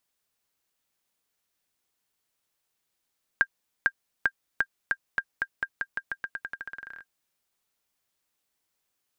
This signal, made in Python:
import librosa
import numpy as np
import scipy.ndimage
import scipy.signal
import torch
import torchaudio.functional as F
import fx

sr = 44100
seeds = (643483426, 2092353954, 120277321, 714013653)

y = fx.bouncing_ball(sr, first_gap_s=0.45, ratio=0.88, hz=1600.0, decay_ms=59.0, level_db=-9.0)